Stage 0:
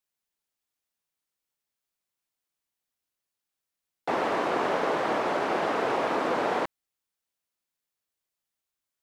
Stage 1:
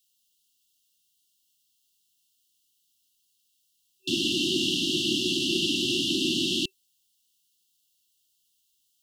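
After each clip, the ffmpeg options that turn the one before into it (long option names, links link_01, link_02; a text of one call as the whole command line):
ffmpeg -i in.wav -af "afftfilt=real='re*(1-between(b*sr/4096,380,2700))':imag='im*(1-between(b*sr/4096,380,2700))':win_size=4096:overlap=0.75,highshelf=frequency=2000:width_type=q:width=1.5:gain=9.5,volume=6dB" out.wav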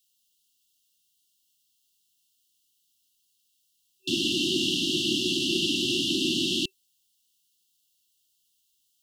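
ffmpeg -i in.wav -af anull out.wav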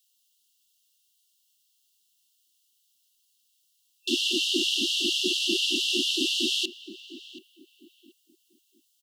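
ffmpeg -i in.wav -filter_complex "[0:a]asplit=2[link_01][link_02];[link_02]adelay=730,lowpass=frequency=1700:poles=1,volume=-13dB,asplit=2[link_03][link_04];[link_04]adelay=730,lowpass=frequency=1700:poles=1,volume=0.32,asplit=2[link_05][link_06];[link_06]adelay=730,lowpass=frequency=1700:poles=1,volume=0.32[link_07];[link_01][link_03][link_05][link_07]amix=inputs=4:normalize=0,afftfilt=real='re*gte(b*sr/1024,200*pow(1600/200,0.5+0.5*sin(2*PI*4.3*pts/sr)))':imag='im*gte(b*sr/1024,200*pow(1600/200,0.5+0.5*sin(2*PI*4.3*pts/sr)))':win_size=1024:overlap=0.75,volume=1.5dB" out.wav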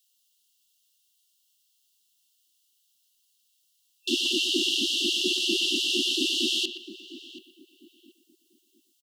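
ffmpeg -i in.wav -filter_complex "[0:a]asplit=2[link_01][link_02];[link_02]adelay=120,highpass=300,lowpass=3400,asoftclip=type=hard:threshold=-21dB,volume=-9dB[link_03];[link_01][link_03]amix=inputs=2:normalize=0" out.wav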